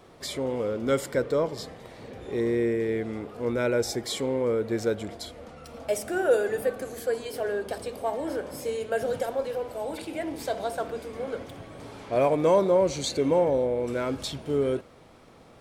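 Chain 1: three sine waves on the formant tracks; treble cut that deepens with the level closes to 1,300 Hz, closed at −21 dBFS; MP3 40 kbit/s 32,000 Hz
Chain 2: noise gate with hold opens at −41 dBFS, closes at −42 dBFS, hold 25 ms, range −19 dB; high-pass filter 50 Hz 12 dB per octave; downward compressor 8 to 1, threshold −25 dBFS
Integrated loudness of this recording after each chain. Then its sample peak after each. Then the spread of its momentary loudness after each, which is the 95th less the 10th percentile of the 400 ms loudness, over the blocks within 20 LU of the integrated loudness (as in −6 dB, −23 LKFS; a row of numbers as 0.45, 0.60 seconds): −28.5, −31.5 LKFS; −6.5, −17.0 dBFS; 13, 9 LU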